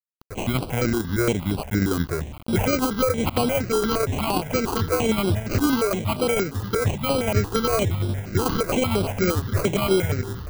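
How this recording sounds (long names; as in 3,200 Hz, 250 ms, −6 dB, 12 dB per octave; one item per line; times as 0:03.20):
aliases and images of a low sample rate 1,800 Hz, jitter 0%
tremolo saw down 11 Hz, depth 40%
a quantiser's noise floor 6 bits, dither none
notches that jump at a steady rate 8.6 Hz 600–6,600 Hz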